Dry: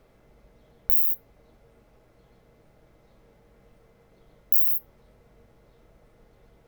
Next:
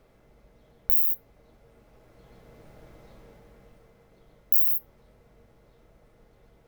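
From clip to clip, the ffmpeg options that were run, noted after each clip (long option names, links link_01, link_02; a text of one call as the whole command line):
ffmpeg -i in.wav -af "dynaudnorm=framelen=200:gausssize=13:maxgain=11dB,volume=-1dB" out.wav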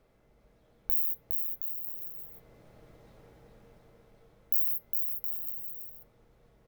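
ffmpeg -i in.wav -af "aecho=1:1:410|717.5|948.1|1121|1251:0.631|0.398|0.251|0.158|0.1,volume=-6.5dB" out.wav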